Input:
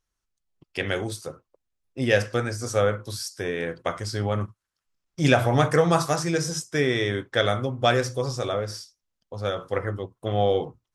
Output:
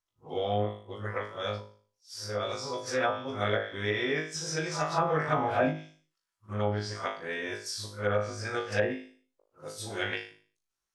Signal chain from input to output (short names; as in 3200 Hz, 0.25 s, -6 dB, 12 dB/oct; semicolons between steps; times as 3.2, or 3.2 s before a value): whole clip reversed; low shelf 290 Hz -12 dB; flutter echo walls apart 3.3 m, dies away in 0.41 s; treble ducked by the level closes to 1200 Hz, closed at -16 dBFS; ending taper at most 130 dB/s; gain -5 dB